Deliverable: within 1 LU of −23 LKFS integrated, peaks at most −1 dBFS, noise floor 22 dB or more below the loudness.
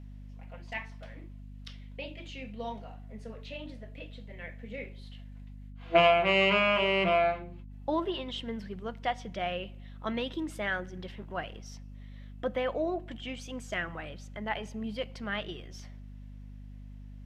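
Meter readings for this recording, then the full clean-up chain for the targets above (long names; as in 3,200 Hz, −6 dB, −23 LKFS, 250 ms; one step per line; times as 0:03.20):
mains hum 50 Hz; hum harmonics up to 250 Hz; level of the hum −43 dBFS; integrated loudness −31.0 LKFS; sample peak −9.5 dBFS; target loudness −23.0 LKFS
→ hum removal 50 Hz, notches 5
level +8 dB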